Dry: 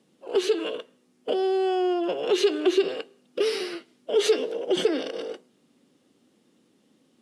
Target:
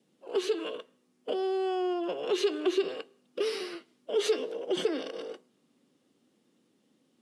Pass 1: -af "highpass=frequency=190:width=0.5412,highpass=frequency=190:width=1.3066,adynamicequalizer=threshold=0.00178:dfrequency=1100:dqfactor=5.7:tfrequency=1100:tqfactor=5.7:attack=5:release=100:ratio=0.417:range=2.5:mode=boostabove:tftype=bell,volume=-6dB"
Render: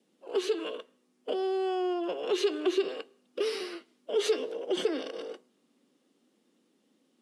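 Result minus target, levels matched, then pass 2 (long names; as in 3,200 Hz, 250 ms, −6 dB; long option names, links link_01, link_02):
125 Hz band −4.5 dB
-af "highpass=frequency=83:width=0.5412,highpass=frequency=83:width=1.3066,adynamicequalizer=threshold=0.00178:dfrequency=1100:dqfactor=5.7:tfrequency=1100:tqfactor=5.7:attack=5:release=100:ratio=0.417:range=2.5:mode=boostabove:tftype=bell,volume=-6dB"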